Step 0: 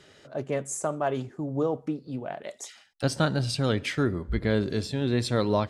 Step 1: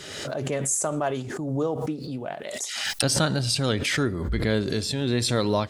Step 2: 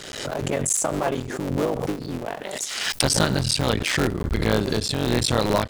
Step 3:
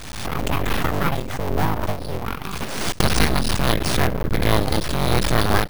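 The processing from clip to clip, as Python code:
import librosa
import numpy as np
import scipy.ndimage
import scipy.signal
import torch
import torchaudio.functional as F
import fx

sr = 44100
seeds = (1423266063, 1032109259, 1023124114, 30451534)

y1 = fx.high_shelf(x, sr, hz=3700.0, db=10.0)
y1 = fx.pre_swell(y1, sr, db_per_s=37.0)
y2 = fx.cycle_switch(y1, sr, every=3, mode='muted')
y2 = F.gain(torch.from_numpy(y2), 4.0).numpy()
y3 = np.abs(y2)
y3 = np.repeat(scipy.signal.resample_poly(y3, 1, 3), 3)[:len(y3)]
y3 = F.gain(torch.from_numpy(y3), 4.5).numpy()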